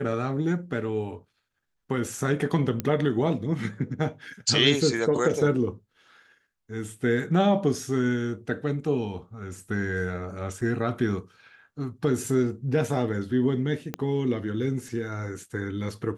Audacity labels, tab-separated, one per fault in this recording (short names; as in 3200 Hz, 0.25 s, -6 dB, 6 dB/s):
2.800000	2.800000	pop -13 dBFS
10.610000	10.610000	gap 4.1 ms
13.940000	13.940000	pop -15 dBFS